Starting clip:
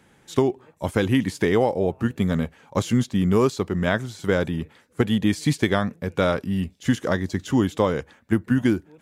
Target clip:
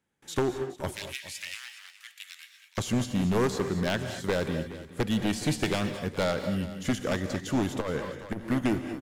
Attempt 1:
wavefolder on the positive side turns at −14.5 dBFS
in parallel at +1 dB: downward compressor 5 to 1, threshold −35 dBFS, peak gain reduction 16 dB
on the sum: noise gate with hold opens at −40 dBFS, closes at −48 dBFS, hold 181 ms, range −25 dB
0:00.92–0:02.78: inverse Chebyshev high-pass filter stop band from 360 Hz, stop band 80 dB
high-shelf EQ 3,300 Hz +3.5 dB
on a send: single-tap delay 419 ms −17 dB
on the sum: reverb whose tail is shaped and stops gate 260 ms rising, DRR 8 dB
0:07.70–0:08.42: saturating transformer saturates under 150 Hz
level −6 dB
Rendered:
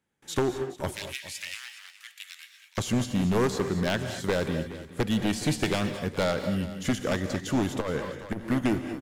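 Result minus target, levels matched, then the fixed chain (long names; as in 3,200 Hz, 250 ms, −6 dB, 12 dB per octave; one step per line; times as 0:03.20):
downward compressor: peak gain reduction −9 dB
wavefolder on the positive side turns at −14.5 dBFS
in parallel at +1 dB: downward compressor 5 to 1, threshold −46.5 dBFS, peak gain reduction 25 dB
on the sum: noise gate with hold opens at −40 dBFS, closes at −48 dBFS, hold 181 ms, range −25 dB
0:00.92–0:02.78: inverse Chebyshev high-pass filter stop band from 360 Hz, stop band 80 dB
high-shelf EQ 3,300 Hz +3.5 dB
on a send: single-tap delay 419 ms −17 dB
on the sum: reverb whose tail is shaped and stops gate 260 ms rising, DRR 8 dB
0:07.70–0:08.42: saturating transformer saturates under 150 Hz
level −6 dB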